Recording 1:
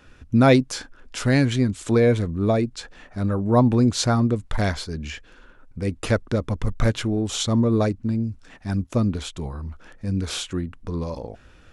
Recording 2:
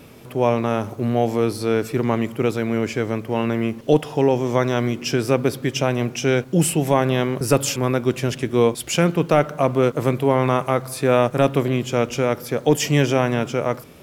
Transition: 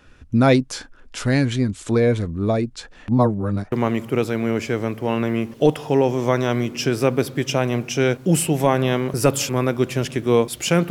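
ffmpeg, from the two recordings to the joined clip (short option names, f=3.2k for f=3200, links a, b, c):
-filter_complex "[0:a]apad=whole_dur=10.9,atrim=end=10.9,asplit=2[a][b];[a]atrim=end=3.082[c];[b]atrim=start=3.078:end=3.722,asetpts=PTS-STARTPTS,areverse[d];[1:a]atrim=start=1.988:end=9.17[e];[c][d]acrossfade=d=0.004:c1=hsin:c2=hsin[f];[f][e]acrossfade=d=0.004:c1=hsin:c2=hsin"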